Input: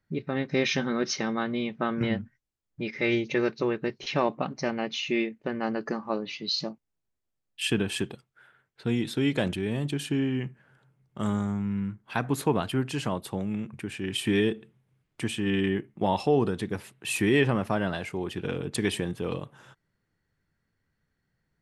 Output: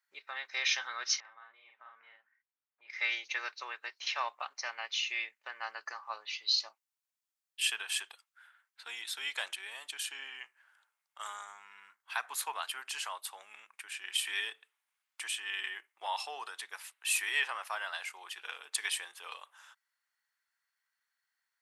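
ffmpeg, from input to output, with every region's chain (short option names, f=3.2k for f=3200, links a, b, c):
-filter_complex "[0:a]asettb=1/sr,asplit=3[a][b][c];[a]atrim=end=1.204[d];[b]atrim=start=1.2:end=2.9,asetpts=PTS-STARTPTS,afade=t=in:d=0.004:c=qsin,afade=t=out:st=1.696:d=0.004:c=qsin,lowpass=2k,acompressor=threshold=-42dB:ratio=8:attack=3.2:release=140:knee=1:detection=peak,asplit=2[e][f];[f]adelay=48,volume=-3dB[g];[e][g]amix=inputs=2:normalize=0,atrim=end_sample=74970[h];[c]atrim=start=2.896[i];[d][h]acrossfade=d=0.004:c1=hsin:c2=qsin[j];[j][i]acrossfade=d=0.004:c1=qsin:c2=hsin,highpass=f=940:w=0.5412,highpass=f=940:w=1.3066,highshelf=f=4.6k:g=6.5,volume=-3dB"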